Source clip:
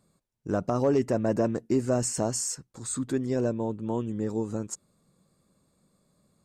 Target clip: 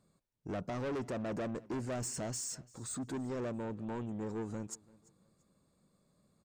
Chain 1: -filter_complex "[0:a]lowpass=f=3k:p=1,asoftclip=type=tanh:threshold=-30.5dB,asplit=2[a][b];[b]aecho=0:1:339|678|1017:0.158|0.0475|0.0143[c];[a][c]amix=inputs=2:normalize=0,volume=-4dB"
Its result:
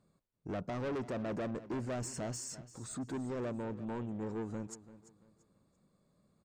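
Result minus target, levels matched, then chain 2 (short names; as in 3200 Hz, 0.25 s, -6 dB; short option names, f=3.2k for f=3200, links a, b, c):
echo-to-direct +7.5 dB; 8000 Hz band -3.5 dB
-filter_complex "[0:a]lowpass=f=7.4k:p=1,asoftclip=type=tanh:threshold=-30.5dB,asplit=2[a][b];[b]aecho=0:1:339|678:0.0668|0.0201[c];[a][c]amix=inputs=2:normalize=0,volume=-4dB"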